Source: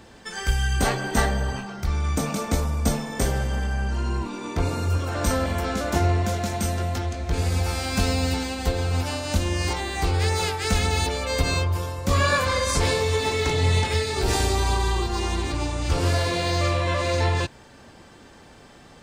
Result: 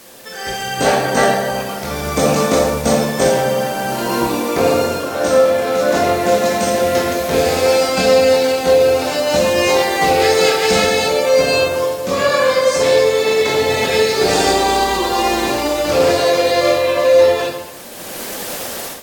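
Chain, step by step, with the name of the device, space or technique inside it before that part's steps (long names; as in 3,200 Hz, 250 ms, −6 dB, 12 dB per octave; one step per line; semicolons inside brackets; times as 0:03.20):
filmed off a television (band-pass filter 220–7,800 Hz; parametric band 540 Hz +8 dB 0.41 octaves; convolution reverb RT60 0.80 s, pre-delay 17 ms, DRR −1.5 dB; white noise bed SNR 21 dB; automatic gain control gain up to 15 dB; level −1.5 dB; AAC 64 kbit/s 44,100 Hz)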